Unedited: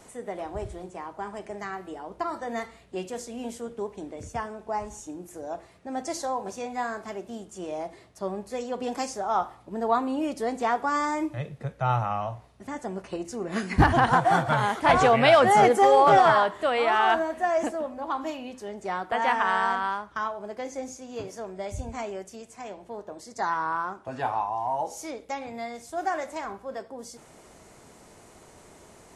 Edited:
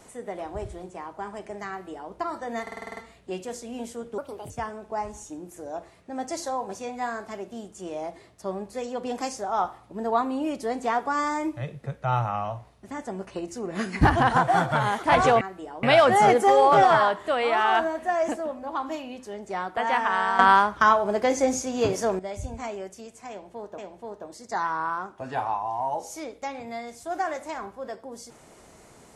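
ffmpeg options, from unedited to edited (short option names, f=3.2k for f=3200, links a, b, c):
-filter_complex "[0:a]asplit=15[a][b][c][d][e][f][g][h][i][j][k][l][m][n][o];[a]atrim=end=2.672[p];[b]atrim=start=2.618:end=2.672[q];[c]atrim=start=2.618:end=2.672[r];[d]atrim=start=2.618:end=2.672[s];[e]atrim=start=2.618:end=2.672[t];[f]atrim=start=2.618:end=2.672[u];[g]atrim=start=2.618:end=2.672[v];[h]atrim=start=2.618:end=3.834[w];[i]atrim=start=3.83:end=4.27,asetpts=PTS-STARTPTS,asetrate=60417,aresample=44100[x];[j]atrim=start=4.266:end=15.182[y];[k]atrim=start=1.698:end=2.122[z];[l]atrim=start=15.178:end=19.742[aa];[m]atrim=start=19.738:end=21.542,asetpts=PTS-STARTPTS,volume=12dB[ab];[n]atrim=start=21.538:end=23.132[ac];[o]atrim=start=22.648[ad];[p][q]acrossfade=d=0.004:c1=hsin:c2=hsin[ae];[ae][r]acrossfade=d=0.004:c1=hsin:c2=hsin[af];[af][s]acrossfade=d=0.004:c1=hsin:c2=hsin[ag];[ag][t]acrossfade=d=0.004:c1=hsin:c2=hsin[ah];[ah][u]acrossfade=d=0.004:c1=hsin:c2=hsin[ai];[ai][v]acrossfade=d=0.004:c1=hsin:c2=hsin[aj];[aj][w]acrossfade=d=0.004:c1=hsin:c2=hsin[ak];[ak][x]acrossfade=d=0.004:c1=hsin:c2=hsin[al];[al][y]acrossfade=d=0.004:c1=hsin:c2=hsin[am];[am][z]acrossfade=d=0.004:c1=hsin:c2=hsin[an];[an][aa]acrossfade=d=0.004:c1=hsin:c2=hsin[ao];[ao][ab]acrossfade=d=0.004:c1=hsin:c2=hsin[ap];[ap][ac]acrossfade=d=0.004:c1=hsin:c2=hsin[aq];[aq][ad]acrossfade=d=0.004:c1=hsin:c2=hsin"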